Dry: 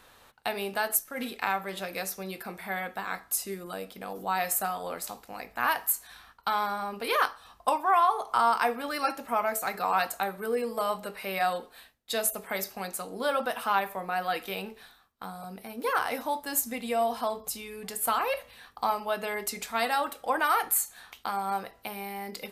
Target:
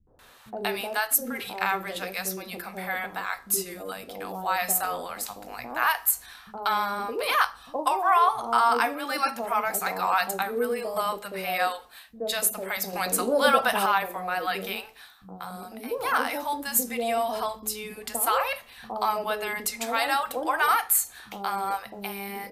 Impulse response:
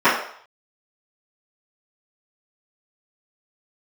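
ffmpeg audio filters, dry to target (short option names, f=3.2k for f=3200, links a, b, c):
-filter_complex "[0:a]asettb=1/sr,asplit=3[a][b][c];[a]atrim=end=8.554[d];[b]atrim=start=8.55:end=9.44,asetpts=PTS-STARTPTS,afade=t=in:d=0.004:c=qsin,afade=t=out:st=0.886:d=0.004:c=qsin,highpass=93[e];[c]atrim=start=9.436[f];[d][e]acrossfade=d=0.004:c1=hsin:c2=qsin[g];[g][f]acrossfade=d=0.004:c1=qsin:c2=hsin,acrossover=split=190|650[h][i][j];[i]adelay=70[k];[j]adelay=190[l];[h][k][l]amix=inputs=3:normalize=0,asettb=1/sr,asplit=3[m][n][o];[m]atrim=end=12.934[p];[n]atrim=start=12.93:end=13.86,asetpts=PTS-STARTPTS,afade=t=in:d=0.004:c=qsin,afade=t=out:st=0.926:d=0.004:c=qsin,acontrast=60[q];[o]atrim=start=13.856[r];[p][q]acrossfade=d=0.004:c1=hsin:c2=qsin[s];[s][r]acrossfade=d=0.004:c1=qsin:c2=hsin,volume=4dB"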